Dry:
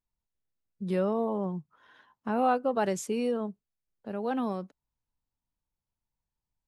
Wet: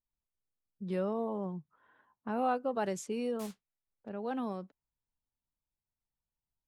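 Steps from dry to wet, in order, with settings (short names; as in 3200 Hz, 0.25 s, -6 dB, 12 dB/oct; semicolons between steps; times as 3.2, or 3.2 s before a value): 3.39–4.09 modulation noise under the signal 10 dB; low-pass opened by the level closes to 1300 Hz, open at -26 dBFS; gain -5.5 dB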